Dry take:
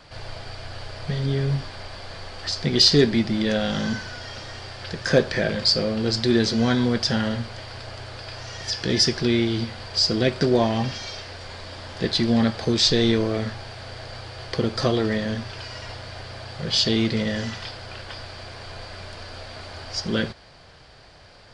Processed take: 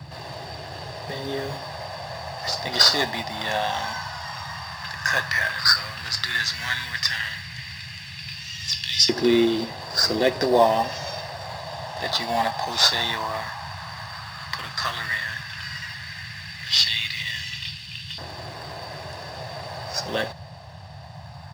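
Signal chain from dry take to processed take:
comb filter 1.1 ms, depth 66%
echo ahead of the sound 70 ms −19 dB
in parallel at −10 dB: sample-and-hold swept by an LFO 14×, swing 60% 0.35 Hz
on the sum: auto-filter high-pass saw up 0.11 Hz 340–3,000 Hz
noise in a band 75–160 Hz −41 dBFS
level −1 dB

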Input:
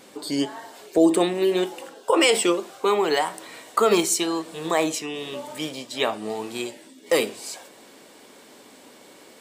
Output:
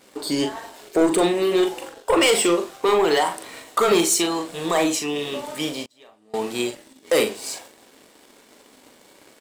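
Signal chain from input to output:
leveller curve on the samples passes 2
double-tracking delay 41 ms −7 dB
0:05.85–0:06.34: gate with flip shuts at −24 dBFS, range −29 dB
level −4 dB

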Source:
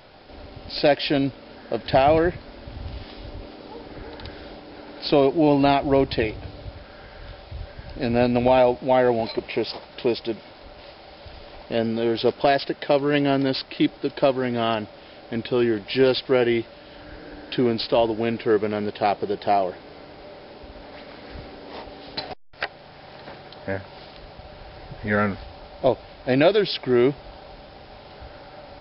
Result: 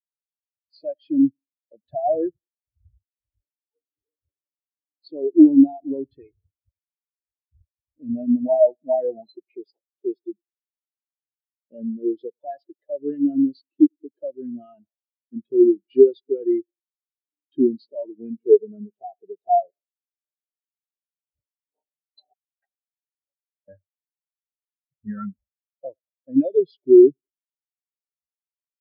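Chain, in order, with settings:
high-pass filter 57 Hz 6 dB per octave
downward expander −34 dBFS
on a send: feedback echo with a low-pass in the loop 95 ms, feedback 44%, level −19 dB
on the sum: dynamic equaliser 520 Hz, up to −5 dB, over −30 dBFS, Q 0.85
in parallel at −3 dB: downward compressor, threshold −27 dBFS, peak gain reduction 11.5 dB
on the sum: high-shelf EQ 4,800 Hz +6.5 dB
boost into a limiter +10.5 dB
every bin expanded away from the loudest bin 4 to 1
level −1 dB

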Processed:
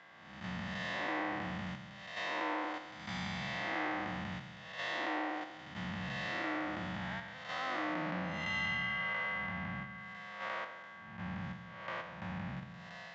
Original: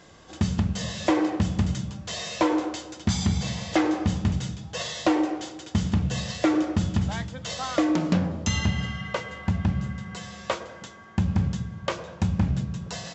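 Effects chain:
spectrum smeared in time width 275 ms
three-way crossover with the lows and the highs turned down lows −14 dB, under 570 Hz, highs −21 dB, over 3,300 Hz
in parallel at +1 dB: output level in coarse steps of 21 dB
on the sum: loudspeaker in its box 120–7,000 Hz, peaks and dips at 180 Hz +3 dB, 420 Hz −8 dB, 1,900 Hz +7 dB
level −5.5 dB

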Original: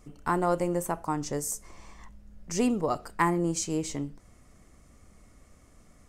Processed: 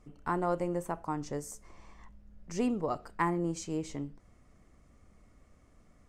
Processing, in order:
low-pass filter 3,200 Hz 6 dB per octave
level −4.5 dB

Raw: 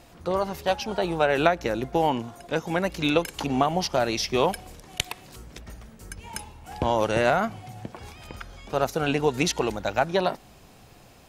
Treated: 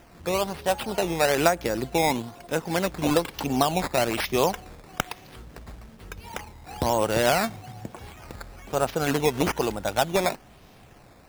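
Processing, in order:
sample-and-hold swept by an LFO 10×, swing 100% 1.1 Hz

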